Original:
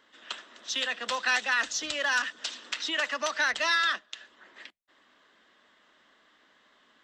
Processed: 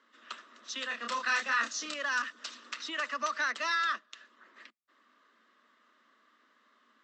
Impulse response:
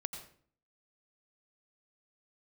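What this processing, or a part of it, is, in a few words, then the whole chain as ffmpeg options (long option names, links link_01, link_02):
television speaker: -filter_complex "[0:a]asettb=1/sr,asplit=3[link_01][link_02][link_03];[link_01]atrim=end=0.874[link_04];[link_02]atrim=start=0.87:end=1.94,asetpts=PTS-STARTPTS,afade=type=in:duration=0.004:curve=qsin,afade=type=out:start_time=1.066:duration=0.004:curve=qsin,asplit=2[link_05][link_06];[link_06]adelay=30,volume=-2.5dB[link_07];[link_05][link_07]amix=inputs=2:normalize=0,atrim=end_sample=47187[link_08];[link_03]atrim=start=1.936[link_09];[link_04][link_08]acrossfade=duration=0.004:curve1=hsin:curve2=qsin[link_10];[link_10][link_09]acrossfade=duration=0.004:curve1=qsin:curve2=hsin,highpass=frequency=220:width=0.5412,highpass=frequency=220:width=1.3066,equalizer=frequency=230:width_type=q:width=4:gain=8,equalizer=frequency=790:width_type=q:width=4:gain=-7,equalizer=frequency=1200:width_type=q:width=4:gain=9,equalizer=frequency=3300:width_type=q:width=4:gain=-5,lowpass=frequency=7700:width=0.5412,lowpass=frequency=7700:width=1.3066,volume=-6dB"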